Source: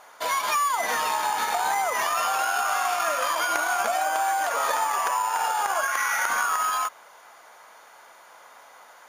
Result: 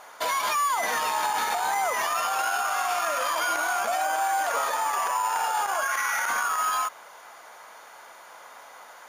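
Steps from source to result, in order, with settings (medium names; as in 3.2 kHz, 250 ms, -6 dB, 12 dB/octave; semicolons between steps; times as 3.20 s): peak limiter -20.5 dBFS, peak gain reduction 8.5 dB; trim +3 dB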